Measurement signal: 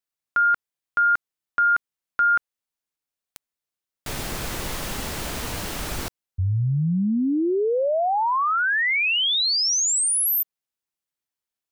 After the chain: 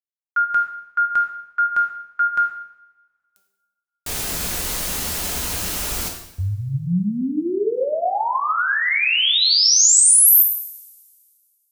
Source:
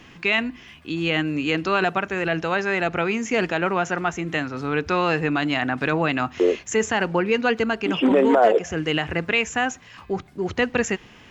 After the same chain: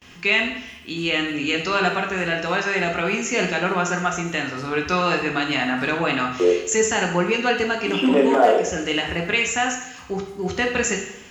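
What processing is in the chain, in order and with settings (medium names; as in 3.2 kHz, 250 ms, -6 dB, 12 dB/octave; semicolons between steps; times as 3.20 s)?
de-hum 196.4 Hz, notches 4; gate with hold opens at -40 dBFS, hold 66 ms, range -25 dB; treble shelf 4.2 kHz +11 dB; two-slope reverb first 0.76 s, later 2.2 s, from -24 dB, DRR 1 dB; trim -2.5 dB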